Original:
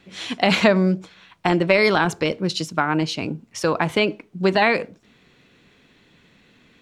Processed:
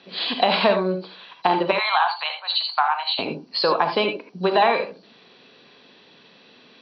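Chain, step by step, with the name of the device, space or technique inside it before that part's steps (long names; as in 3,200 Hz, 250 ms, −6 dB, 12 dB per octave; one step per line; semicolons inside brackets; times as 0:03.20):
0:01.71–0:03.19: Chebyshev band-pass filter 720–7,400 Hz, order 5
dynamic equaliser 1,000 Hz, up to +6 dB, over −34 dBFS, Q 1.5
hearing aid with frequency lowering (hearing-aid frequency compression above 3,900 Hz 4 to 1; downward compressor 2 to 1, threshold −27 dBFS, peak gain reduction 10 dB; loudspeaker in its box 310–6,300 Hz, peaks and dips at 320 Hz −6 dB, 1,400 Hz −4 dB, 2,100 Hz −10 dB)
reverb whose tail is shaped and stops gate 100 ms rising, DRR 5.5 dB
level +7 dB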